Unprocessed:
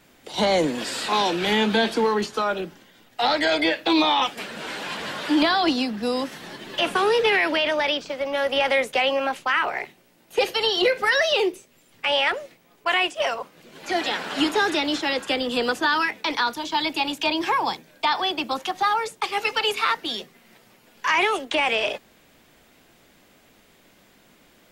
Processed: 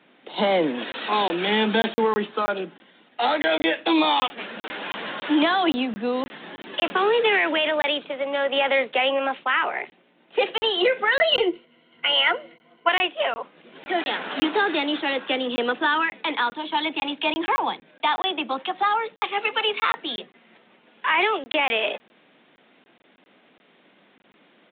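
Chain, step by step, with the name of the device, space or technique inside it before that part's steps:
call with lost packets (high-pass filter 180 Hz 24 dB per octave; downsampling to 8,000 Hz; dropped packets of 20 ms random)
0:11.19–0:12.89: EQ curve with evenly spaced ripples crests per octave 1.9, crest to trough 14 dB

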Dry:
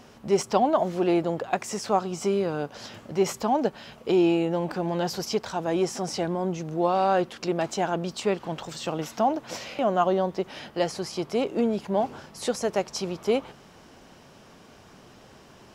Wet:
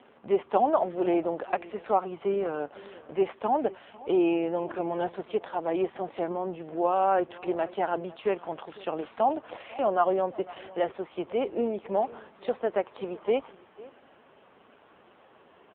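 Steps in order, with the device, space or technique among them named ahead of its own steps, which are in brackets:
satellite phone (band-pass filter 320–3,000 Hz; single-tap delay 501 ms −20.5 dB; AMR narrowband 5.9 kbit/s 8,000 Hz)

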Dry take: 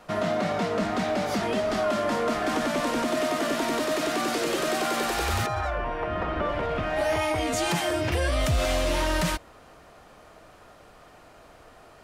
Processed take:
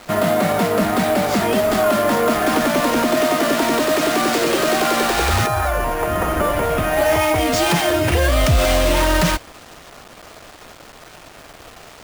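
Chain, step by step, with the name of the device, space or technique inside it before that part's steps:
early 8-bit sampler (sample-rate reduction 12,000 Hz, jitter 0%; bit reduction 8 bits)
level +9 dB

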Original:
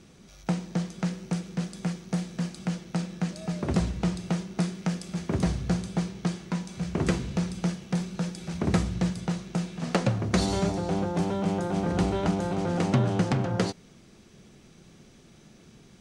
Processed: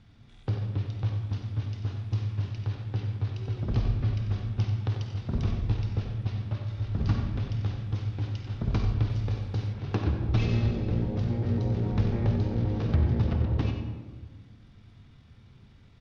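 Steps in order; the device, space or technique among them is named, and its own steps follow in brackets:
monster voice (pitch shifter −9 semitones; low-shelf EQ 190 Hz +7 dB; single-tap delay 92 ms −11 dB; convolution reverb RT60 1.5 s, pre-delay 47 ms, DRR 4.5 dB)
0:09.10–0:09.73: high-shelf EQ 7,200 Hz +9.5 dB
level −6.5 dB

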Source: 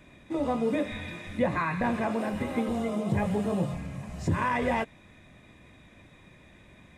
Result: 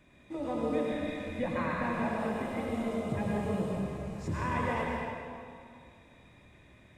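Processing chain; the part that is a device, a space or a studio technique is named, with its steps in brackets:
stairwell (convolution reverb RT60 2.3 s, pre-delay 91 ms, DRR −2 dB)
level −8 dB

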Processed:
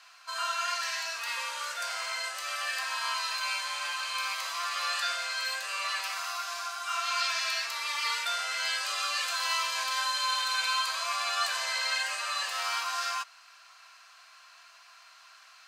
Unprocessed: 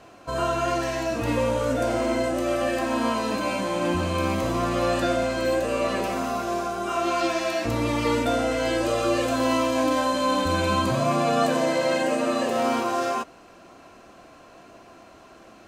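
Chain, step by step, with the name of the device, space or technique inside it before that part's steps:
headphones lying on a table (high-pass filter 1,200 Hz 24 dB per octave; parametric band 4,600 Hz +7.5 dB 0.5 octaves)

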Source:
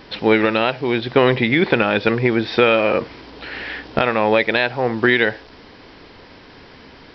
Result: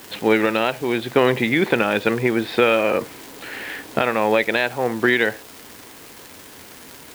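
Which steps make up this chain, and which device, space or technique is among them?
78 rpm shellac record (band-pass filter 140–4,400 Hz; surface crackle 230 per second −26 dBFS; white noise bed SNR 24 dB)
parametric band 86 Hz +6 dB 0.42 octaves
level −2 dB

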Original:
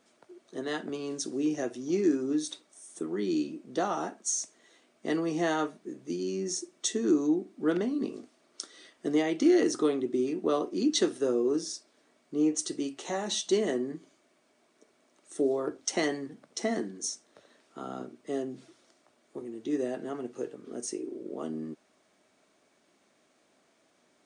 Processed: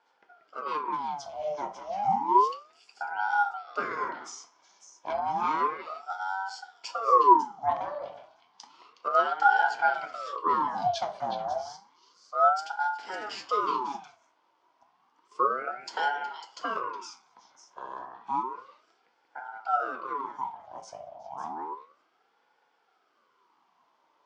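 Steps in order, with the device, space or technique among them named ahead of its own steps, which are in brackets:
0:09.94–0:10.36: spectral tilt +5 dB per octave
echo through a band-pass that steps 183 ms, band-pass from 1,100 Hz, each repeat 1.4 octaves, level −2.5 dB
feedback delay network reverb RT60 0.52 s, low-frequency decay 0.85×, high-frequency decay 0.55×, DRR 6.5 dB
voice changer toy (ring modulator whose carrier an LFO sweeps 720 Hz, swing 60%, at 0.31 Hz; loudspeaker in its box 420–4,500 Hz, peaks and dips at 590 Hz −7 dB, 1,000 Hz +7 dB, 1,800 Hz −9 dB, 2,600 Hz −7 dB, 3,900 Hz −8 dB)
level +2.5 dB

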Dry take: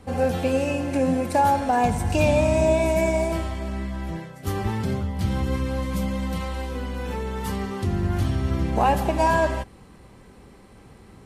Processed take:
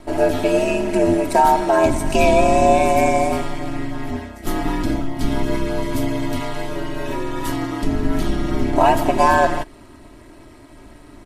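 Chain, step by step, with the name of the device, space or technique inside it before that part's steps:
ring-modulated robot voice (ring modulation 78 Hz; comb filter 3.1 ms, depth 75%)
level +6.5 dB

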